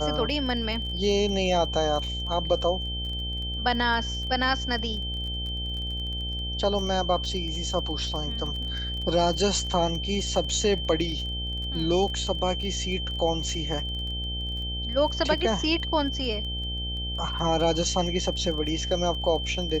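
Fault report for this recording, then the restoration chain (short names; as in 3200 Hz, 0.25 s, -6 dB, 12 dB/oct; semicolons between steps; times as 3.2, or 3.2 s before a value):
buzz 60 Hz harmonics 14 -33 dBFS
crackle 20/s -34 dBFS
tone 3100 Hz -32 dBFS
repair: de-click; de-hum 60 Hz, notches 14; notch 3100 Hz, Q 30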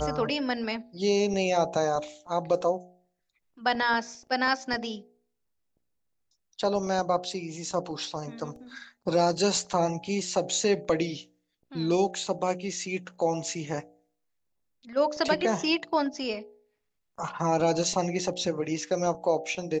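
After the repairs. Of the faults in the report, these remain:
none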